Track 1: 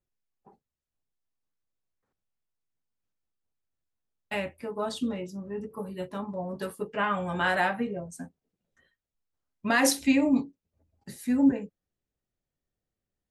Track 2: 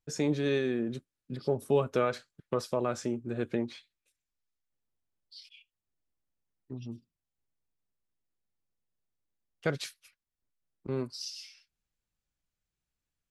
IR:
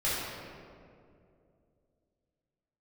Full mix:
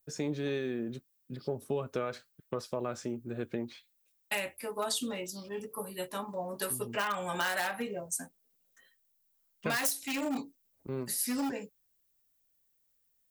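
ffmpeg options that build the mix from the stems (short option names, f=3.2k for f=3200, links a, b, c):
-filter_complex "[0:a]volume=21dB,asoftclip=hard,volume=-21dB,aemphasis=mode=production:type=riaa,asoftclip=type=tanh:threshold=-1dB,volume=0.5dB[a];[1:a]volume=-3.5dB[b];[a][b]amix=inputs=2:normalize=0,acompressor=threshold=-28dB:ratio=12"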